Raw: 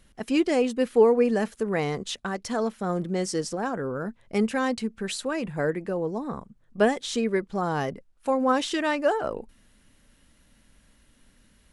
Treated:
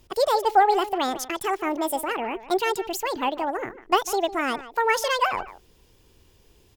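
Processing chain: speed mistake 45 rpm record played at 78 rpm; speakerphone echo 0.15 s, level -14 dB; gain +1.5 dB

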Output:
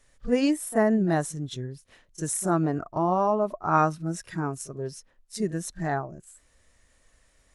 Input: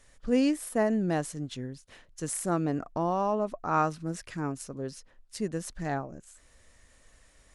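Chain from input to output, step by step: pre-echo 32 ms -14 dB; spectral noise reduction 8 dB; gain +4.5 dB

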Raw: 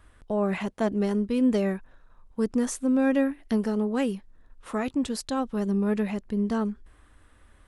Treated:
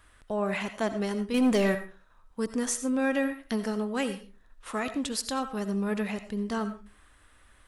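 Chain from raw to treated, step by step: tilt shelf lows -5 dB, about 870 Hz; 1.34–1.75 sample leveller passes 2; on a send: reverb RT60 0.30 s, pre-delay 45 ms, DRR 10.5 dB; on the sum: gain -1 dB

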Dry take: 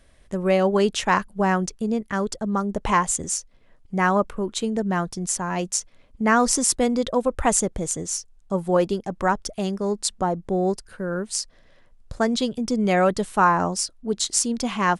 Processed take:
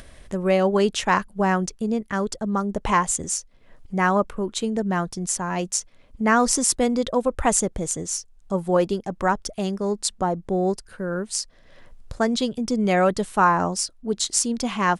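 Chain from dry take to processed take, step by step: upward compressor, threshold -34 dBFS

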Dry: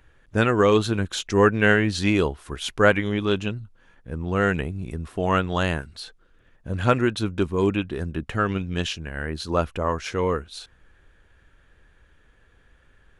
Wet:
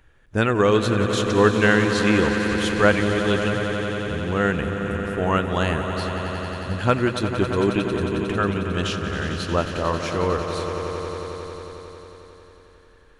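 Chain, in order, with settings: swelling echo 90 ms, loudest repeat 5, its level -11.5 dB

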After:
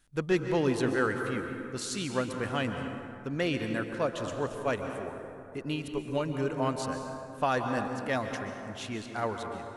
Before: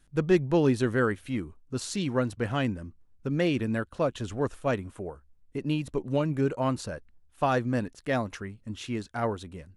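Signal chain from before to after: low shelf 470 Hz -7.5 dB; plate-style reverb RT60 2.7 s, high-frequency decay 0.45×, pre-delay 0.115 s, DRR 5 dB

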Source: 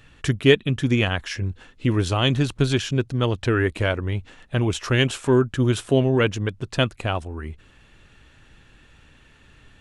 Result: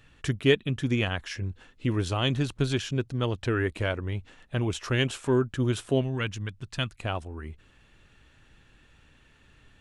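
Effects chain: 6.01–7.02 bell 470 Hz -10.5 dB 1.9 oct; gain -6 dB

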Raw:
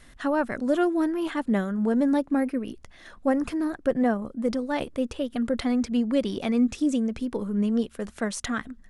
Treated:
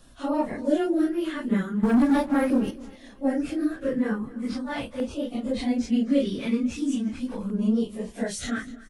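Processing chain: phase scrambler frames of 0.1 s; 1.83–2.71 sample leveller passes 2; LFO notch saw down 0.4 Hz 350–2100 Hz; feedback echo 0.252 s, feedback 37%, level -19.5 dB

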